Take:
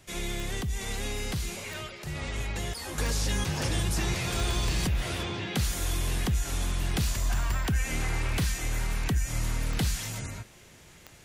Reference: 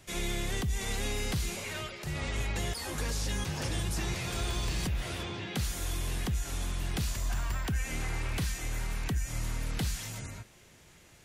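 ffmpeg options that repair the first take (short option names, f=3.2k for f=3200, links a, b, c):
-af "adeclick=t=4,asetnsamples=n=441:p=0,asendcmd='2.98 volume volume -4.5dB',volume=0dB"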